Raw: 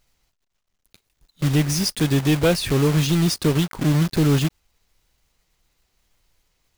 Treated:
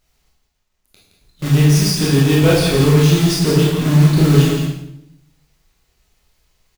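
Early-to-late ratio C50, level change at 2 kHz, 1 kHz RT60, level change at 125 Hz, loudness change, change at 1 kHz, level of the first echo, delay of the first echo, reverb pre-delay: 1.0 dB, +5.5 dB, 0.75 s, +8.0 dB, +6.5 dB, +5.5 dB, -7.5 dB, 0.169 s, 20 ms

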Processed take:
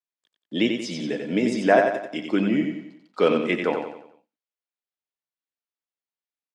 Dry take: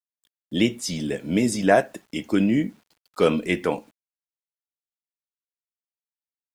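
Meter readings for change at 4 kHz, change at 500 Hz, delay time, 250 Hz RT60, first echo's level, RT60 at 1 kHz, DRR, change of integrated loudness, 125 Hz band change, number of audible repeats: -0.5 dB, +1.0 dB, 91 ms, none, -5.5 dB, none, none, 0.0 dB, -4.5 dB, 5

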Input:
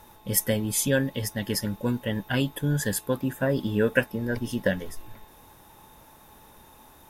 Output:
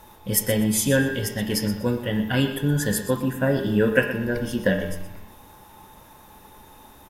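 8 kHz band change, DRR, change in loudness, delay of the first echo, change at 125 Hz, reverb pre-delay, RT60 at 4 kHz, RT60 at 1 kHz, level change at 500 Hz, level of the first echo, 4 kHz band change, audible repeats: +2.5 dB, 3.0 dB, +3.5 dB, 0.122 s, +3.5 dB, 5 ms, 0.75 s, 0.75 s, +3.5 dB, -13.0 dB, +3.5 dB, 2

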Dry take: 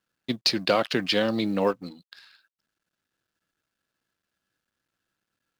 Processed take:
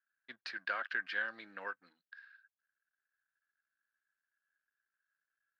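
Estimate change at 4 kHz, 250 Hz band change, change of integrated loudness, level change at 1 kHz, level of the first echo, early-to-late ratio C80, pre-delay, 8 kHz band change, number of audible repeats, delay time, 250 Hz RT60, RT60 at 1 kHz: -22.5 dB, -32.0 dB, -14.5 dB, -13.5 dB, none, none, none, under -25 dB, none, none, none, none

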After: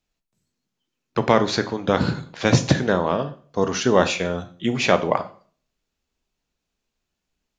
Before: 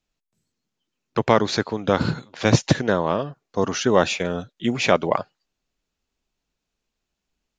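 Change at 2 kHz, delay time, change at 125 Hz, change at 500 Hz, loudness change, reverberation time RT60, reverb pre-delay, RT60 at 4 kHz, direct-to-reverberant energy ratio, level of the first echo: +0.5 dB, none, +0.5 dB, +0.5 dB, +0.5 dB, 0.45 s, 13 ms, 0.40 s, 8.5 dB, none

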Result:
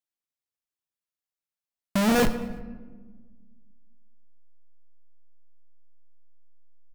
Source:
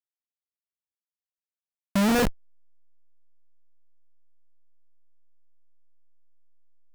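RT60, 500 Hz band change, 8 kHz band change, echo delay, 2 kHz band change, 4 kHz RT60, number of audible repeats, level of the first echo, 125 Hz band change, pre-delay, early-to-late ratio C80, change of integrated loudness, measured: 1.5 s, +1.5 dB, +0.5 dB, 0.112 s, +0.5 dB, 0.75 s, 2, -21.0 dB, -0.5 dB, 3 ms, 13.0 dB, -0.5 dB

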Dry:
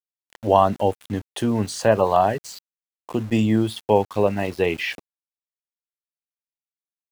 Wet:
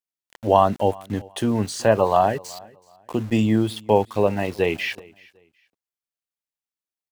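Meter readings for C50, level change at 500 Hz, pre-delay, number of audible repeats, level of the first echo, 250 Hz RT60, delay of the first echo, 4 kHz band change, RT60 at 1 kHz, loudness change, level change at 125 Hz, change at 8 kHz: none, 0.0 dB, none, 1, -24.0 dB, none, 0.375 s, 0.0 dB, none, 0.0 dB, 0.0 dB, 0.0 dB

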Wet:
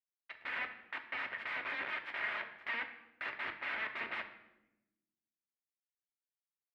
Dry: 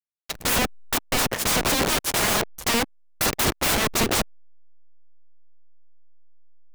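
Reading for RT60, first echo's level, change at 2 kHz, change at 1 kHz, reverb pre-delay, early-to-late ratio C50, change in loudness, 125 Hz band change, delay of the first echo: 0.95 s, none, -9.5 dB, -17.0 dB, 3 ms, 10.5 dB, -17.0 dB, under -35 dB, none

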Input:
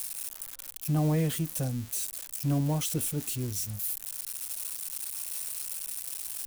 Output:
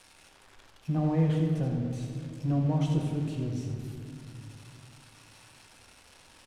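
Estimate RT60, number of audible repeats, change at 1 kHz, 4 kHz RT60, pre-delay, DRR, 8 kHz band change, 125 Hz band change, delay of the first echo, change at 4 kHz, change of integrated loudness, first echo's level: 2.6 s, 1, +1.0 dB, 1.5 s, 4 ms, 1.0 dB, -21.0 dB, +2.0 dB, 83 ms, -8.5 dB, +1.5 dB, -8.5 dB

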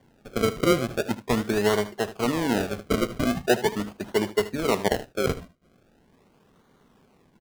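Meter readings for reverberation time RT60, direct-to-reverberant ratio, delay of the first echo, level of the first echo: none, none, 77 ms, -15.0 dB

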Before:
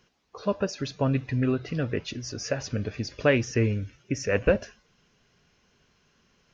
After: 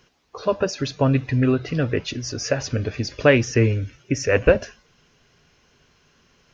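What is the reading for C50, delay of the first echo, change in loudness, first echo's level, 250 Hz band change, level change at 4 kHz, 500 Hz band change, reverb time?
none, none, +6.0 dB, none, +5.5 dB, +6.5 dB, +6.5 dB, none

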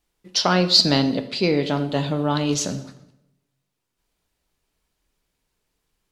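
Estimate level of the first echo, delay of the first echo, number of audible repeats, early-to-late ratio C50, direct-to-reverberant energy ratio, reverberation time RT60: none, none, none, 13.0 dB, 9.0 dB, 0.85 s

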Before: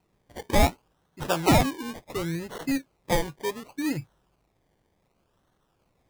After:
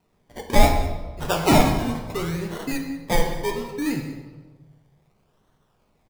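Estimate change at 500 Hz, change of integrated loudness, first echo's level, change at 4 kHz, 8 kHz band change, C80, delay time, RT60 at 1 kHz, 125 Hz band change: +4.0 dB, +3.5 dB, -18.0 dB, +3.5 dB, +3.0 dB, 7.5 dB, 0.195 s, 1.3 s, +4.0 dB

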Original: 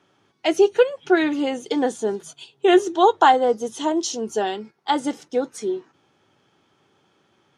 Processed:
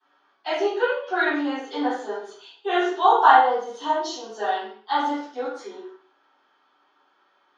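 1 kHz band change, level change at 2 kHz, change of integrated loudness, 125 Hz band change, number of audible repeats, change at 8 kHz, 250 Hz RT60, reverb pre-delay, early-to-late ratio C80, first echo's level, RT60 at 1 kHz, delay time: +1.5 dB, +2.0 dB, -1.5 dB, n/a, none, under -10 dB, 0.55 s, 3 ms, 4.5 dB, none, 0.50 s, none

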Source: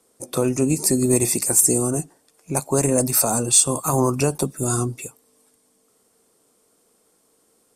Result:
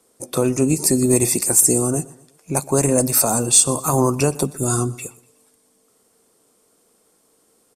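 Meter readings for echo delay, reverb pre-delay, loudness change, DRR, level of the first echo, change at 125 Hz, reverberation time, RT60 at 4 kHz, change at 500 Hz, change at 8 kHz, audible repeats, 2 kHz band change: 0.122 s, none, +2.0 dB, none, -21.0 dB, +2.0 dB, none, none, +2.0 dB, +2.0 dB, 2, +2.0 dB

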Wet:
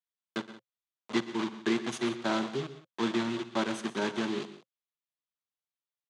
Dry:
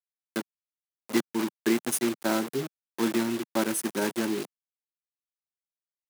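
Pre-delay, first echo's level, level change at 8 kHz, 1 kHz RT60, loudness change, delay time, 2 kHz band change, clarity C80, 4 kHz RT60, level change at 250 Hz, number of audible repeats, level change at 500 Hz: none, -19.0 dB, -12.5 dB, none, -3.5 dB, 58 ms, -1.5 dB, none, none, -4.0 dB, 3, -3.5 dB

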